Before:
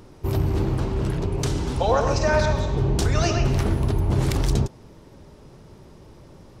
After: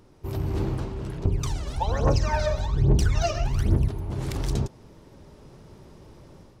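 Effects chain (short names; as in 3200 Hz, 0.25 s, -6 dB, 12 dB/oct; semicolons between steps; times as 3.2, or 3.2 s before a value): 1.25–3.88 phaser 1.2 Hz, delay 1.8 ms, feedback 77%; AGC gain up to 7 dB; gain -8.5 dB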